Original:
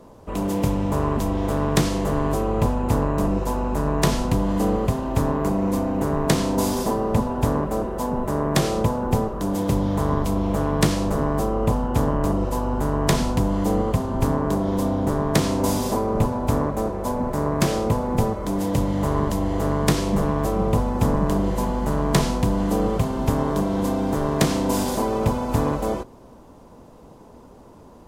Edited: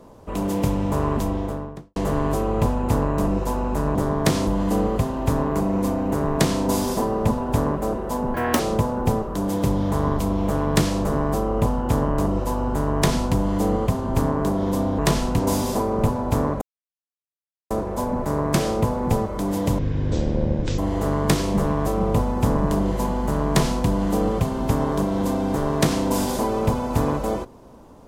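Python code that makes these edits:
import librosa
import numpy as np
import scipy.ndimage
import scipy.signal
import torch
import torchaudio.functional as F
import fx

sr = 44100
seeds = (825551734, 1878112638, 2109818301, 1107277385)

y = fx.studio_fade_out(x, sr, start_s=1.16, length_s=0.8)
y = fx.edit(y, sr, fx.swap(start_s=3.95, length_s=0.41, other_s=15.04, other_length_s=0.52),
    fx.speed_span(start_s=8.23, length_s=0.42, speed=1.65),
    fx.insert_silence(at_s=16.78, length_s=1.09),
    fx.speed_span(start_s=18.86, length_s=0.51, speed=0.51), tone=tone)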